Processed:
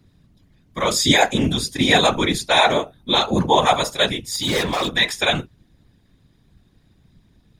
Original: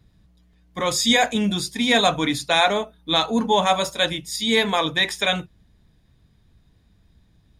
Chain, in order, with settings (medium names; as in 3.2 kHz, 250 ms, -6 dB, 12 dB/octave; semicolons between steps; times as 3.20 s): 4.30–4.95 s: overload inside the chain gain 21 dB; whisper effect; trim +2.5 dB